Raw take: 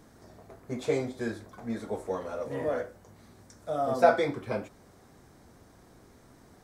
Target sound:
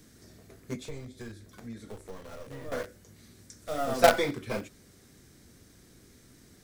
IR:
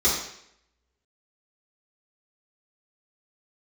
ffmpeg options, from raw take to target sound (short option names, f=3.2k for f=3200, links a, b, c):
-filter_complex "[0:a]highshelf=f=2.1k:g=6.5,acrossover=split=520|1400[a][b][c];[b]acrusher=bits=4:dc=4:mix=0:aa=0.000001[d];[a][d][c]amix=inputs=3:normalize=0,asettb=1/sr,asplit=3[e][f][g];[e]atrim=end=0.754[h];[f]atrim=start=0.75:end=2.72,asetpts=PTS-STARTPTS,afade=t=in:d=0.004:c=qsin,afade=t=out:st=1.966:d=0.004:c=qsin,acrossover=split=130[i][j];[j]acompressor=threshold=-43dB:ratio=5[k];[i][k]amix=inputs=2:normalize=0[l];[g]atrim=start=2.716[m];[h][l]acrossfade=d=0.004:c1=hsin:c2=qsin[n];[n][m]acrossfade=d=0.004:c1=qsin:c2=hsin"